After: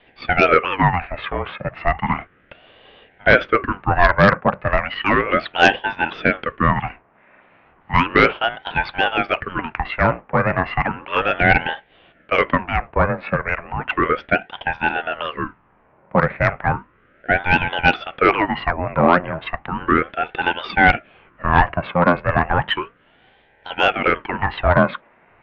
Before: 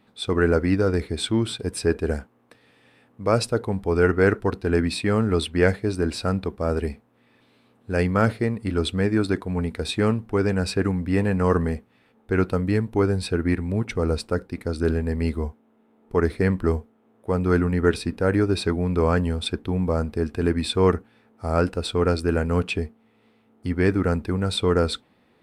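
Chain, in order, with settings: mistuned SSB -88 Hz 530–2400 Hz; sine folder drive 4 dB, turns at -9.5 dBFS; ring modulator with a swept carrier 690 Hz, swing 75%, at 0.34 Hz; gain +8 dB

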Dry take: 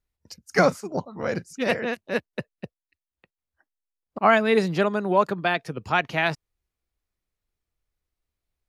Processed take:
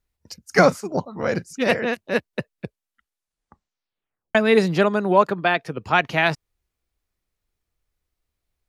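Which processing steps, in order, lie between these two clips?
2.5 tape stop 1.85 s; 5.22–5.93 tone controls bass -3 dB, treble -5 dB; gain +4 dB

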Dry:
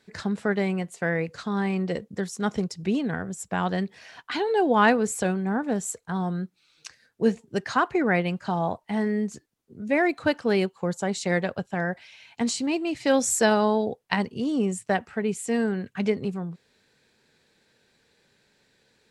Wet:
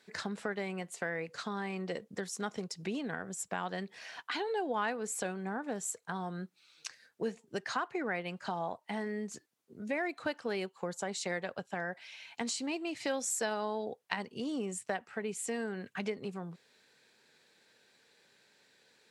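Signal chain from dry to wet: HPF 99 Hz; low shelf 270 Hz -11.5 dB; compressor 2.5:1, threshold -36 dBFS, peak gain reduction 14 dB

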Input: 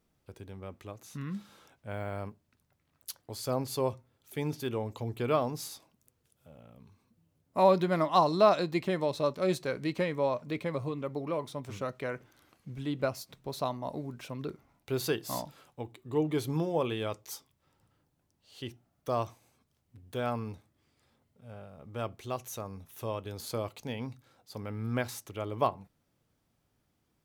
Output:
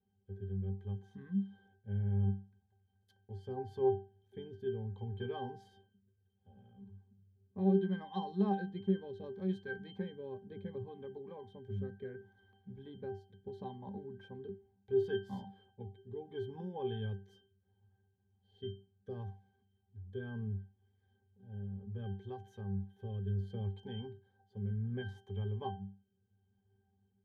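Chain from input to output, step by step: rotary speaker horn 0.7 Hz; octave resonator G, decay 0.32 s; dynamic EQ 670 Hz, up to -5 dB, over -60 dBFS, Q 0.74; gain +13 dB

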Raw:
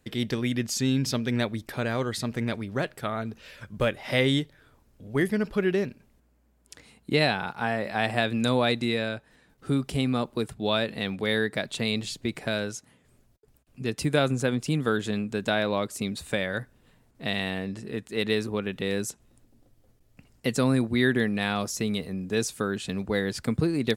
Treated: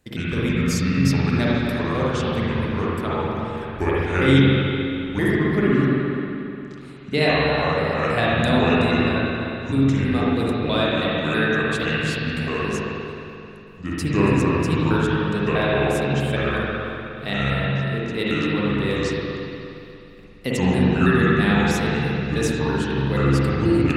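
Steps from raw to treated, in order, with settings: trilling pitch shifter -6 st, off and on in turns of 0.162 s; spring tank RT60 2.9 s, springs 44/59 ms, chirp 35 ms, DRR -7 dB

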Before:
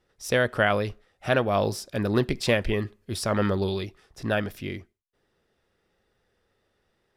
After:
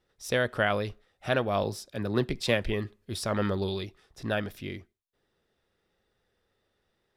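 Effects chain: bell 3700 Hz +4 dB 0.3 oct; 1.63–2.64 three-band expander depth 40%; gain -4 dB

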